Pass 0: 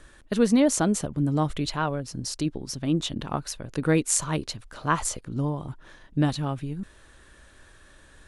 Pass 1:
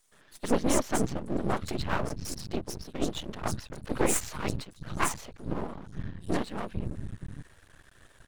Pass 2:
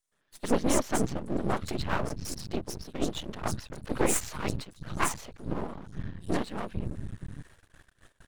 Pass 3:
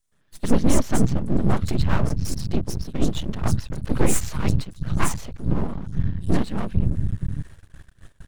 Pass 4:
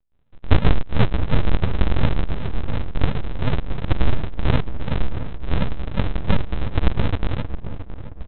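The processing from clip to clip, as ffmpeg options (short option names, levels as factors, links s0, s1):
-filter_complex "[0:a]afftfilt=real='hypot(re,im)*cos(2*PI*random(0))':imag='hypot(re,im)*sin(2*PI*random(1))':win_size=512:overlap=0.75,acrossover=split=160|4700[s0][s1][s2];[s1]adelay=120[s3];[s0]adelay=590[s4];[s4][s3][s2]amix=inputs=3:normalize=0,aeval=exprs='max(val(0),0)':c=same,volume=2"
-af "agate=range=0.158:threshold=0.002:ratio=16:detection=peak"
-filter_complex "[0:a]bass=f=250:g=12,treble=f=4000:g=1,asplit=2[s0][s1];[s1]asoftclip=type=tanh:threshold=0.178,volume=0.501[s2];[s0][s2]amix=inputs=2:normalize=0"
-filter_complex "[0:a]aresample=8000,acrusher=samples=42:mix=1:aa=0.000001:lfo=1:lforange=42:lforate=2.8,aresample=44100,asplit=2[s0][s1];[s1]adelay=670,lowpass=f=1400:p=1,volume=0.282,asplit=2[s2][s3];[s3]adelay=670,lowpass=f=1400:p=1,volume=0.39,asplit=2[s4][s5];[s5]adelay=670,lowpass=f=1400:p=1,volume=0.39,asplit=2[s6][s7];[s7]adelay=670,lowpass=f=1400:p=1,volume=0.39[s8];[s0][s2][s4][s6][s8]amix=inputs=5:normalize=0,volume=1.26"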